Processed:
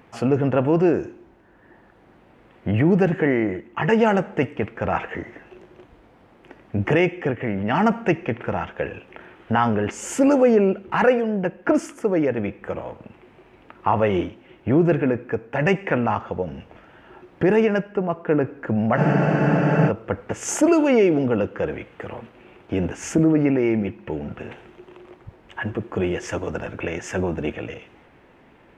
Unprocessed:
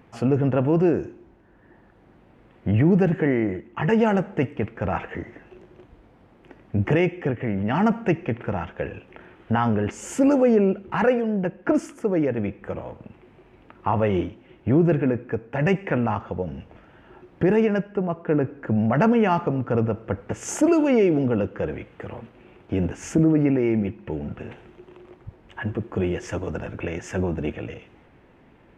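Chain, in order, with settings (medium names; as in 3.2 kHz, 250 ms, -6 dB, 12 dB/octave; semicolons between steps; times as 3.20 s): bass shelf 290 Hz -7 dB; spectral freeze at 18.99 s, 0.89 s; trim +4.5 dB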